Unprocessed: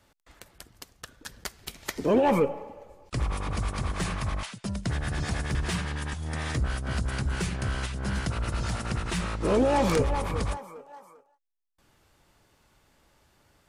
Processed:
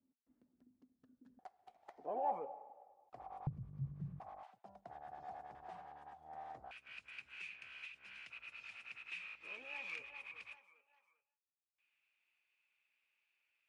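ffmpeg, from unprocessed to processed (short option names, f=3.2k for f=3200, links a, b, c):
-af "asetnsamples=n=441:p=0,asendcmd='1.39 bandpass f 750;3.47 bandpass f 140;4.2 bandpass f 760;6.71 bandpass f 2500',bandpass=f=250:t=q:w=14:csg=0"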